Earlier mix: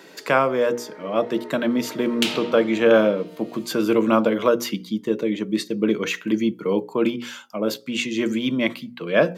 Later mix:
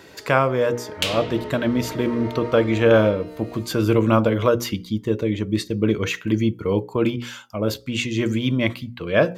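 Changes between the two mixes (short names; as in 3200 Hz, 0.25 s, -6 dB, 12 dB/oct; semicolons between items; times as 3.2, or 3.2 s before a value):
first sound +5.0 dB; second sound: entry -1.20 s; master: remove steep high-pass 160 Hz 36 dB/oct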